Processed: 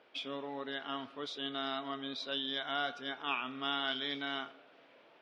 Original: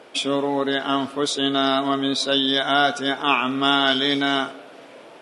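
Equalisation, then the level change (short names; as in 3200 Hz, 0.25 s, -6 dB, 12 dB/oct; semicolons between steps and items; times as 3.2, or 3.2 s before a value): air absorption 290 m; pre-emphasis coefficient 0.9; high shelf 6400 Hz -11.5 dB; 0.0 dB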